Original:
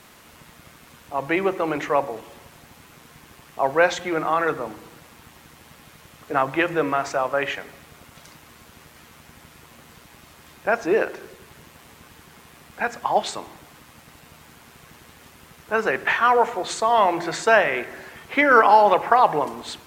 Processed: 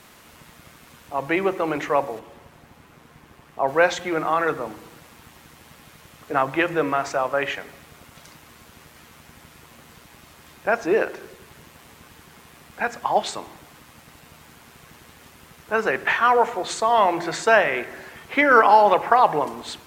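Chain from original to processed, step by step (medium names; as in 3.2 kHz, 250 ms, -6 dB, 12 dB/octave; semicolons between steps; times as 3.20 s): 2.19–3.68 s: treble shelf 2.6 kHz -9.5 dB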